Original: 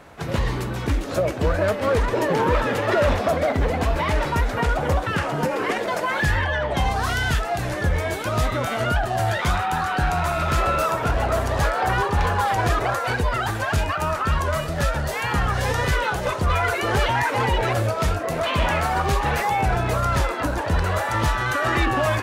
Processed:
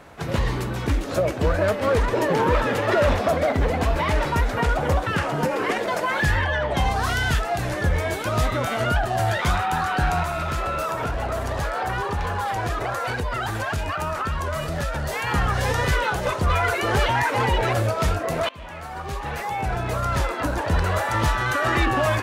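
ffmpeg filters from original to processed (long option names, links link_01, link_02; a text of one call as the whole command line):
ffmpeg -i in.wav -filter_complex "[0:a]asettb=1/sr,asplit=3[link_01][link_02][link_03];[link_01]atrim=end=10.234[link_04];[link_02]atrim=start=10.23:end=15.27,asetpts=PTS-STARTPTS,afade=type=in:duration=0.004:curve=qsin,afade=type=out:start_time=5.036:duration=0.004:curve=qsin,acompressor=threshold=-22dB:ratio=5:attack=3.2:release=140:knee=1:detection=peak[link_05];[link_03]atrim=start=15.266[link_06];[link_04][link_05]acrossfade=duration=0.004:curve1=hsin:curve2=qsin[link_07];[link_07][link_06]acrossfade=duration=0.004:curve1=qsin:curve2=hsin,asplit=2[link_08][link_09];[link_08]atrim=end=18.49,asetpts=PTS-STARTPTS,afade=type=out:start_time=18.486:duration=0.004:curve=hsin:silence=0.0707946[link_10];[link_09]atrim=start=18.49,asetpts=PTS-STARTPTS,afade=type=in:duration=2.17:silence=0.0707946[link_11];[link_10][link_11]concat=n=2:v=0:a=1" out.wav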